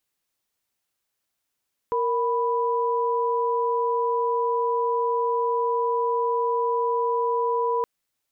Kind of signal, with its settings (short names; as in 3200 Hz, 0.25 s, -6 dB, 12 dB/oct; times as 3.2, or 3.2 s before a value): chord A#4/B5 sine, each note -23.5 dBFS 5.92 s